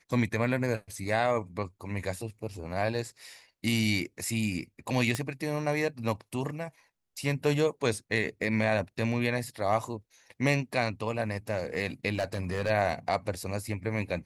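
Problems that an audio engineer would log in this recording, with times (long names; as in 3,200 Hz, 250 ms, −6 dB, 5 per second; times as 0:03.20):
0:05.15: click −15 dBFS
0:12.14–0:12.71: clipping −24 dBFS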